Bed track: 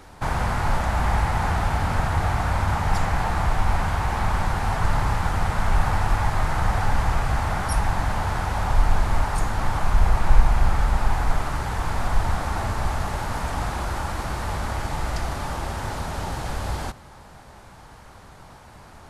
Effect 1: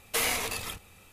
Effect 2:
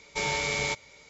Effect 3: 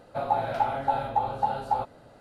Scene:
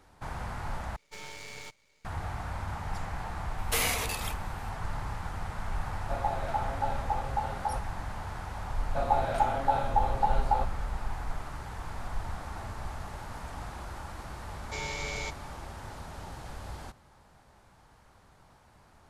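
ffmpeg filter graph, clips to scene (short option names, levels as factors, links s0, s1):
-filter_complex "[2:a]asplit=2[s0][s1];[3:a]asplit=2[s2][s3];[0:a]volume=0.211[s4];[s0]aeval=exprs='max(val(0),0)':c=same[s5];[s4]asplit=2[s6][s7];[s6]atrim=end=0.964[s8];[s5]atrim=end=1.09,asetpts=PTS-STARTPTS,volume=0.282[s9];[s7]atrim=start=2.046[s10];[1:a]atrim=end=1.12,asetpts=PTS-STARTPTS,volume=0.891,afade=t=in:d=0.004:c=hsin,afade=t=out:st=1.116:d=0.004:c=hsin,adelay=3580[s11];[s2]atrim=end=2.2,asetpts=PTS-STARTPTS,volume=0.473,afade=t=in:d=0.004:c=hsin,afade=t=out:st=2.196:d=0.004:c=hsin,adelay=5940[s12];[s3]atrim=end=2.2,asetpts=PTS-STARTPTS,volume=0.891,afade=t=in:d=0.004:c=hsin,afade=t=out:st=2.196:d=0.004:c=hsin,adelay=8800[s13];[s1]atrim=end=1.09,asetpts=PTS-STARTPTS,volume=0.398,afade=t=in:d=0.004:c=hsin,afade=t=out:st=1.086:d=0.004:c=hsin,adelay=14560[s14];[s8][s9]acrossfade=d=0.004:c1=hsin:c2=hsin[s15];[s15][s10]acrossfade=d=0.004:c1=hsin:c2=hsin[s16];[s16][s11][s12][s13][s14]amix=inputs=5:normalize=0"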